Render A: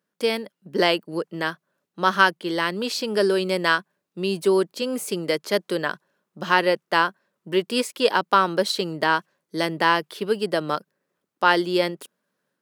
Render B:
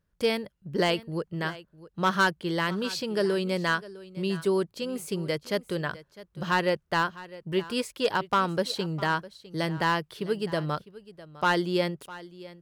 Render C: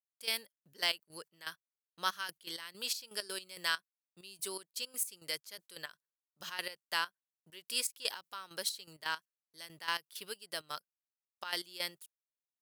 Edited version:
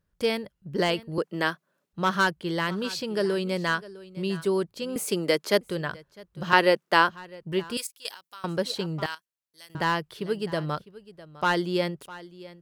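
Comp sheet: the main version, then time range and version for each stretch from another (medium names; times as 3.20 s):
B
1.18–1.93 s: from A
4.96–5.61 s: from A
6.53–7.09 s: from A
7.77–8.44 s: from C
9.06–9.75 s: from C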